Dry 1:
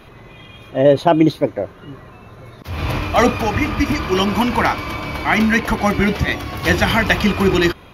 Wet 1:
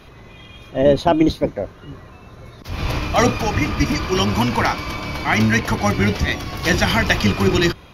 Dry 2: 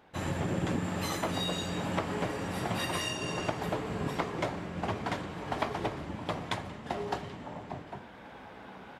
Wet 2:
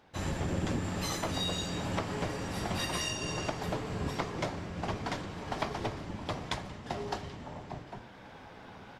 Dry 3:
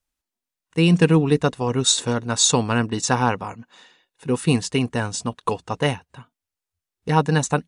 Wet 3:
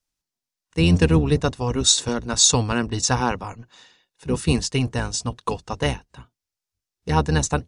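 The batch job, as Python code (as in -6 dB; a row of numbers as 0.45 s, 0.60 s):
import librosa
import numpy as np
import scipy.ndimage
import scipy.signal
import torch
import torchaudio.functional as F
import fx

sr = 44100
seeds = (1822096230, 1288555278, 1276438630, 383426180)

y = fx.octave_divider(x, sr, octaves=1, level_db=-2.0)
y = fx.peak_eq(y, sr, hz=5400.0, db=7.0, octaves=0.95)
y = y * librosa.db_to_amplitude(-2.5)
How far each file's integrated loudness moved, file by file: -1.5 LU, -1.0 LU, -0.5 LU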